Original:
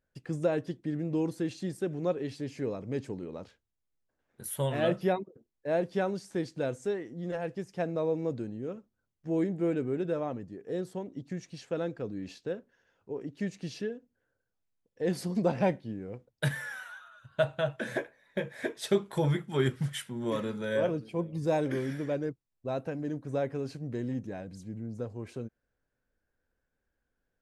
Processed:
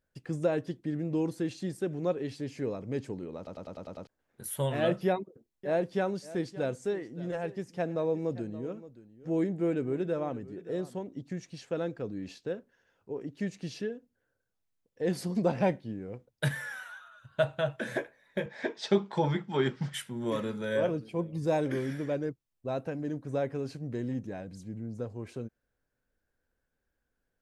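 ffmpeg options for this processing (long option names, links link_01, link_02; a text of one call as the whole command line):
ffmpeg -i in.wav -filter_complex "[0:a]asettb=1/sr,asplit=3[link_01][link_02][link_03];[link_01]atrim=end=5.064[link_04];[link_02]atrim=start=5.06:end=11.01,asetpts=PTS-STARTPTS,afade=type=in:duration=0.004:curve=qsin,afade=type=out:start_time=5.946:duration=0.004:curve=qsin,aecho=1:1:573:0.141,atrim=end_sample=262395[link_05];[link_03]atrim=start=11.006[link_06];[link_04][link_05]acrossfade=duration=0.004:curve1=hsin:curve2=qsin[link_07];[link_07][link_06]acrossfade=duration=0.004:curve1=qsin:curve2=hsin,asettb=1/sr,asplit=3[link_08][link_09][link_10];[link_08]atrim=end=18.464[link_11];[link_09]atrim=start=18.46:end=19.94,asetpts=PTS-STARTPTS,afade=type=in:duration=0.004:curve=qsin,afade=type=out:start_time=1.476:duration=0.004:curve=qsin,highpass=170,equalizer=frequency=190:width_type=q:width=4:gain=6,equalizer=frequency=870:width_type=q:width=4:gain=7,equalizer=frequency=4900:width_type=q:width=4:gain=4,lowpass=frequency=6100:width=0.5412,lowpass=frequency=6100:width=1.3066[link_12];[link_10]atrim=start=19.936[link_13];[link_11][link_12]acrossfade=duration=0.004:curve1=hsin:curve2=qsin[link_14];[link_14][link_13]acrossfade=duration=0.004:curve1=qsin:curve2=hsin,asplit=8[link_15][link_16][link_17][link_18][link_19][link_20][link_21][link_22];[link_15]atrim=end=3.472[link_23];[link_16]atrim=start=3.368:end=3.472[link_24];[link_17]atrim=start=3.368:end=3.472[link_25];[link_18]atrim=start=3.368:end=3.472[link_26];[link_19]atrim=start=3.368:end=3.472[link_27];[link_20]atrim=start=3.368:end=3.472[link_28];[link_21]atrim=start=3.368:end=3.472[link_29];[link_22]atrim=start=4.068[link_30];[link_23][link_24]acrossfade=duration=0.004:curve1=hsin:curve2=hsin[link_31];[link_31][link_25]acrossfade=duration=0.004:curve1=hsin:curve2=hsin[link_32];[link_32][link_26]acrossfade=duration=0.004:curve1=hsin:curve2=hsin[link_33];[link_33][link_27]acrossfade=duration=0.004:curve1=hsin:curve2=hsin[link_34];[link_34][link_28]acrossfade=duration=0.004:curve1=hsin:curve2=hsin[link_35];[link_35][link_29]acrossfade=duration=0.004:curve1=hsin:curve2=hsin[link_36];[link_36][link_30]acrossfade=duration=0.004:curve1=hsin:curve2=hsin" out.wav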